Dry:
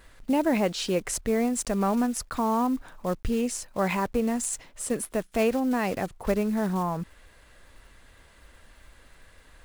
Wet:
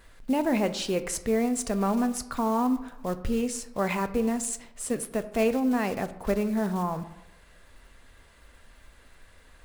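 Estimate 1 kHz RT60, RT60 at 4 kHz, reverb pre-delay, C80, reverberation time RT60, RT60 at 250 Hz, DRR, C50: 0.90 s, 0.50 s, 3 ms, 16.0 dB, 0.90 s, 0.85 s, 10.0 dB, 13.5 dB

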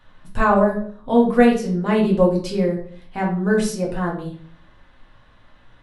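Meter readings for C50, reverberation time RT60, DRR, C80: 7.0 dB, 0.50 s, −2.5 dB, 11.5 dB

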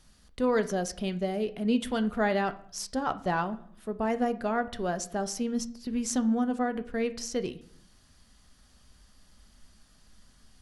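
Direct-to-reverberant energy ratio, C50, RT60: 10.5 dB, 16.0 dB, 0.60 s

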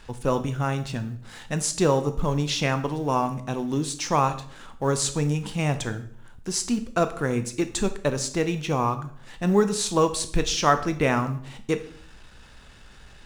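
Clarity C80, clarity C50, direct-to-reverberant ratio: 16.5 dB, 13.5 dB, 9.0 dB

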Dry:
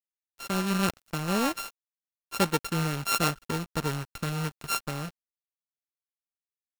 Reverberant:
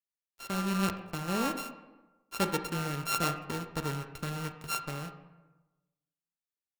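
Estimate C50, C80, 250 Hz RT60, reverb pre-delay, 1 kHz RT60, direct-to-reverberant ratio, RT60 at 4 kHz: 9.0 dB, 11.0 dB, 1.2 s, 23 ms, 1.1 s, 7.0 dB, 0.70 s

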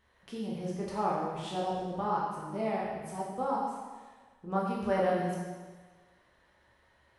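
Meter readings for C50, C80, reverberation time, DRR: 0.5 dB, 2.5 dB, 1.4 s, −5.5 dB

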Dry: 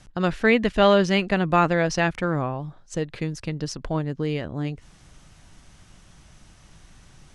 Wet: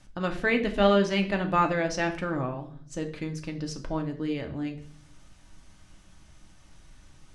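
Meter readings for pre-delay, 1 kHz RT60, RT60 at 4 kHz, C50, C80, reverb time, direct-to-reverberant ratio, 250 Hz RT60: 3 ms, 0.45 s, 0.50 s, 11.5 dB, 16.0 dB, 0.55 s, 3.5 dB, 1.1 s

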